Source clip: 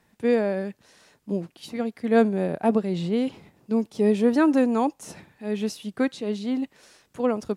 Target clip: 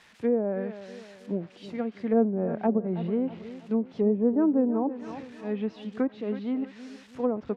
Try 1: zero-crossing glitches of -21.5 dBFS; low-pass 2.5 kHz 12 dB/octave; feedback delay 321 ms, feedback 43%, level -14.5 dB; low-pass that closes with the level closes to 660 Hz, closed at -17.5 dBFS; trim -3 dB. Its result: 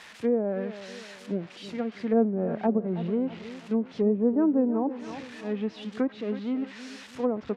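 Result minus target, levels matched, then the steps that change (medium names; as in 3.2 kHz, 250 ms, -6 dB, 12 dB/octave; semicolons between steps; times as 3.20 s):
zero-crossing glitches: distortion +9 dB
change: zero-crossing glitches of -31 dBFS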